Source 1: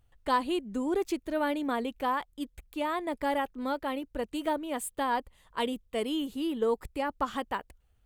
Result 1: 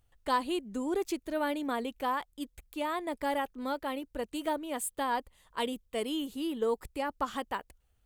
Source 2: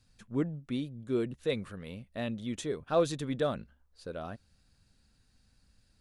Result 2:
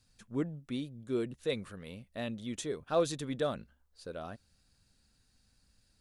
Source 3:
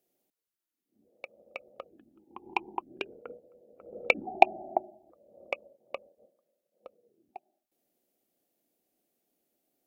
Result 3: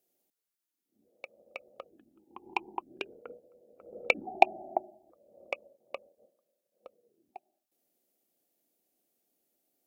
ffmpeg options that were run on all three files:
ffmpeg -i in.wav -af "bass=frequency=250:gain=-2,treble=frequency=4000:gain=4,volume=-2dB" out.wav

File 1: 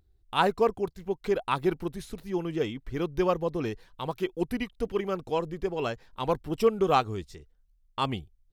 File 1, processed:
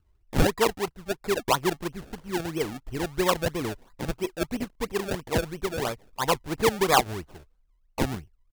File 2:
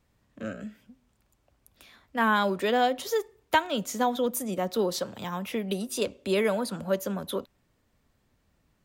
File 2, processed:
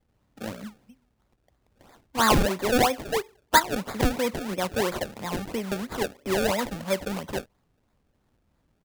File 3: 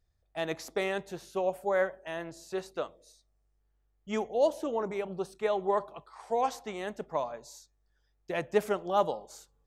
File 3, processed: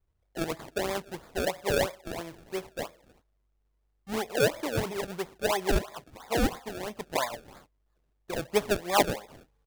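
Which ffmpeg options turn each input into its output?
ffmpeg -i in.wav -af "aresample=32000,aresample=44100,adynamicequalizer=threshold=0.00631:dfrequency=1000:dqfactor=2.8:tfrequency=1000:tqfactor=2.8:attack=5:release=100:ratio=0.375:range=4:mode=boostabove:tftype=bell,acrusher=samples=30:mix=1:aa=0.000001:lfo=1:lforange=30:lforate=3" out.wav

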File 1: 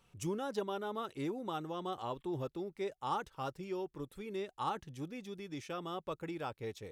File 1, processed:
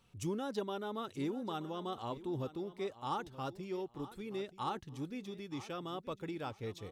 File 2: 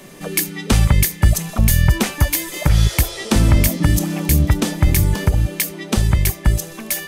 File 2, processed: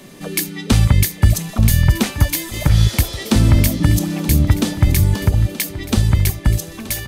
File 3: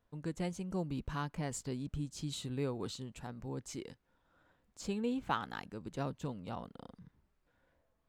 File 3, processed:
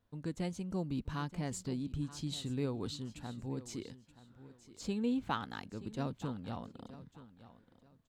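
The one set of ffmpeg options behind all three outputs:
ffmpeg -i in.wav -filter_complex "[0:a]equalizer=frequency=100:width_type=o:width=0.67:gain=6,equalizer=frequency=250:width_type=o:width=0.67:gain=5,equalizer=frequency=4000:width_type=o:width=0.67:gain=4,asplit=2[link_01][link_02];[link_02]aecho=0:1:927|1854:0.158|0.038[link_03];[link_01][link_03]amix=inputs=2:normalize=0,volume=-2dB" out.wav

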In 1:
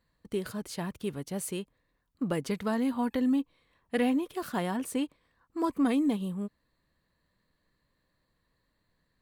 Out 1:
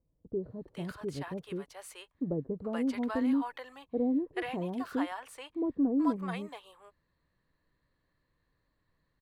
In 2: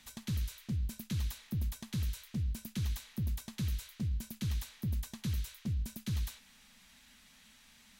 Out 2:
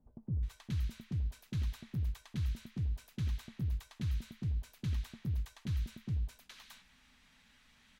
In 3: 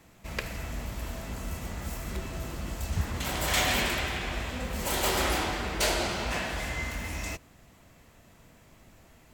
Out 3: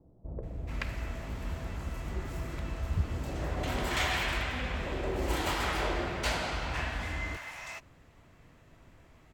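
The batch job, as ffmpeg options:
ffmpeg -i in.wav -filter_complex "[0:a]lowpass=frequency=2200:poles=1,equalizer=frequency=210:width_type=o:width=0.27:gain=-8,acrossover=split=650[link_01][link_02];[link_02]adelay=430[link_03];[link_01][link_03]amix=inputs=2:normalize=0" out.wav

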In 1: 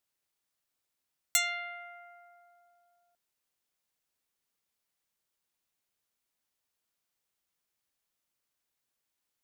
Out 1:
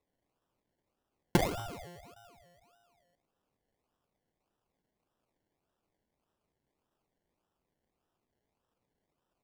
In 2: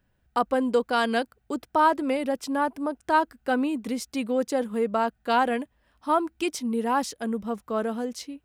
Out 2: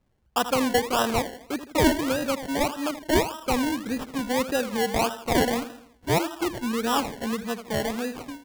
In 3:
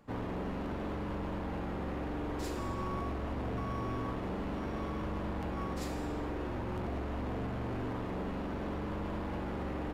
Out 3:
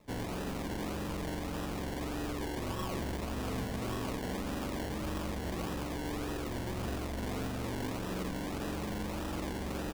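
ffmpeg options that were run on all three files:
ffmpeg -i in.wav -af "aecho=1:1:81|162|243|324|405:0.251|0.121|0.0579|0.0278|0.0133,acrusher=samples=28:mix=1:aa=0.000001:lfo=1:lforange=16.8:lforate=1.7" out.wav

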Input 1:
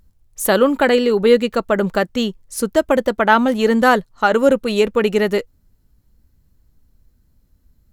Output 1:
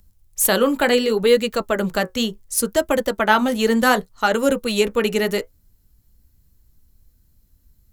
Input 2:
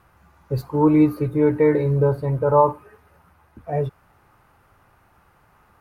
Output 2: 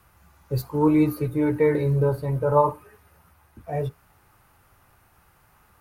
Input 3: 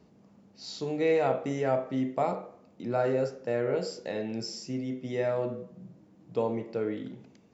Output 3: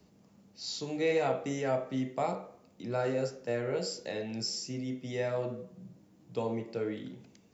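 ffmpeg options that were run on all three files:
ffmpeg -i in.wav -filter_complex "[0:a]highshelf=frequency=6100:gain=9,acrossover=split=140|1900[link_01][link_02][link_03];[link_02]flanger=delay=10:depth=7.8:regen=-40:speed=0.68:shape=sinusoidal[link_04];[link_03]asoftclip=type=hard:threshold=-11.5dB[link_05];[link_01][link_04][link_05]amix=inputs=3:normalize=0" out.wav

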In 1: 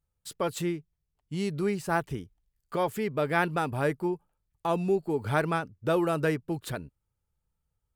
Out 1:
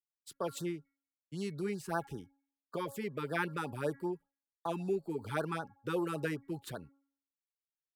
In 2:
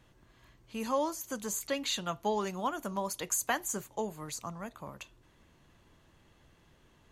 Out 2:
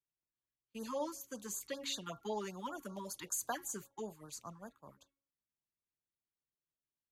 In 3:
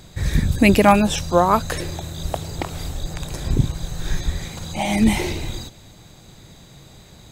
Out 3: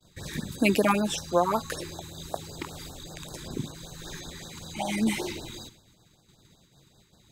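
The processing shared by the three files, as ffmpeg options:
ffmpeg -i in.wav -filter_complex "[0:a]agate=range=-33dB:threshold=-38dB:ratio=3:detection=peak,lowshelf=frequency=97:gain=-7,bandreject=frequency=276.5:width_type=h:width=4,bandreject=frequency=553:width_type=h:width=4,bandreject=frequency=829.5:width_type=h:width=4,bandreject=frequency=1106:width_type=h:width=4,bandreject=frequency=1382.5:width_type=h:width=4,bandreject=frequency=1659:width_type=h:width=4,bandreject=frequency=1935.5:width_type=h:width=4,bandreject=frequency=2212:width_type=h:width=4,acrossover=split=160|1700[link_01][link_02][link_03];[link_01]acompressor=threshold=-39dB:ratio=6[link_04];[link_04][link_02][link_03]amix=inputs=3:normalize=0,afftfilt=real='re*(1-between(b*sr/1024,560*pow(2600/560,0.5+0.5*sin(2*PI*5.2*pts/sr))/1.41,560*pow(2600/560,0.5+0.5*sin(2*PI*5.2*pts/sr))*1.41))':imag='im*(1-between(b*sr/1024,560*pow(2600/560,0.5+0.5*sin(2*PI*5.2*pts/sr))/1.41,560*pow(2600/560,0.5+0.5*sin(2*PI*5.2*pts/sr))*1.41))':win_size=1024:overlap=0.75,volume=-6.5dB" out.wav

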